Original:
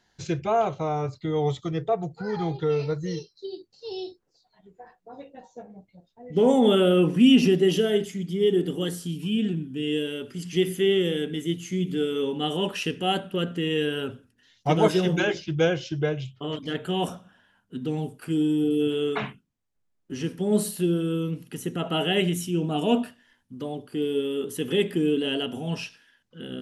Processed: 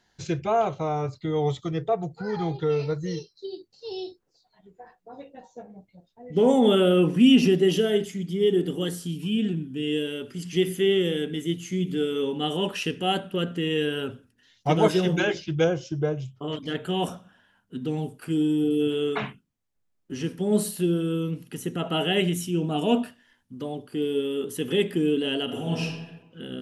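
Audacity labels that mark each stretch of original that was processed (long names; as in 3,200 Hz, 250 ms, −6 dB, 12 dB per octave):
15.640000	16.480000	flat-topped bell 2,700 Hz −9.5 dB
25.440000	25.840000	thrown reverb, RT60 1.1 s, DRR −0.5 dB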